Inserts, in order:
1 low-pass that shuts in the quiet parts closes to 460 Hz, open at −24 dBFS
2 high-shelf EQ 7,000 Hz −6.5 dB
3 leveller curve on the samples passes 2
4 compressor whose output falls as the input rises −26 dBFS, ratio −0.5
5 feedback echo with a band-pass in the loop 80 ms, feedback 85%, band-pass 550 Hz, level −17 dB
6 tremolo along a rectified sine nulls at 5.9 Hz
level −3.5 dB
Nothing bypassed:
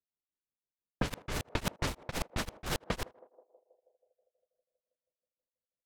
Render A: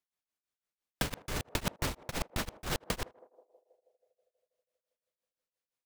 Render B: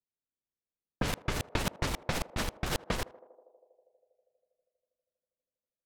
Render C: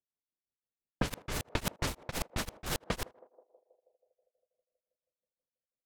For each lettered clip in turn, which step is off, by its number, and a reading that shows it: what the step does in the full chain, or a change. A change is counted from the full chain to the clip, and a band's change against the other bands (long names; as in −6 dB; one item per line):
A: 1, 8 kHz band +2.5 dB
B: 6, change in crest factor −1.5 dB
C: 2, 8 kHz band +2.5 dB